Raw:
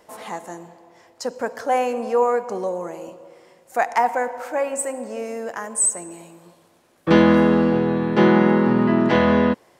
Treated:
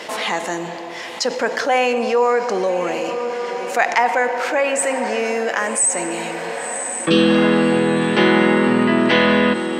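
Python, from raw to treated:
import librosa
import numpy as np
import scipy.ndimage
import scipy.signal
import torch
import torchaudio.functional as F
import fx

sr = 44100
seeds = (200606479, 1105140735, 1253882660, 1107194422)

y = fx.weighting(x, sr, curve='D')
y = fx.spec_repair(y, sr, seeds[0], start_s=7.12, length_s=0.3, low_hz=540.0, high_hz=2400.0, source='both')
y = scipy.signal.sosfilt(scipy.signal.butter(2, 82.0, 'highpass', fs=sr, output='sos'), y)
y = fx.high_shelf(y, sr, hz=6500.0, db=-11.0)
y = fx.echo_diffused(y, sr, ms=1077, feedback_pct=55, wet_db=-15.5)
y = fx.env_flatten(y, sr, amount_pct=50)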